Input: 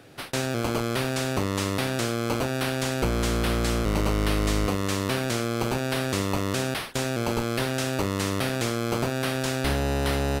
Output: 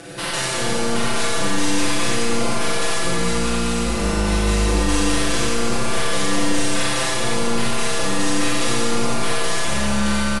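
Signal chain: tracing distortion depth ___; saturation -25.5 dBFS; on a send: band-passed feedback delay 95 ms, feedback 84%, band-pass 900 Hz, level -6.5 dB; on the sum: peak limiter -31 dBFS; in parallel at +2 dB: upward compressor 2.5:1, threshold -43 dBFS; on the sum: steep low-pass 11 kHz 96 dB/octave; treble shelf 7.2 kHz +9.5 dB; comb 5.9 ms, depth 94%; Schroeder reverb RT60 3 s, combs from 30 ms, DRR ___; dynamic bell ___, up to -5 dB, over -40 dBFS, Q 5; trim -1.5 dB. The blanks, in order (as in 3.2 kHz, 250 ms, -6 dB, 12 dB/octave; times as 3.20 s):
0.088 ms, -7.5 dB, 140 Hz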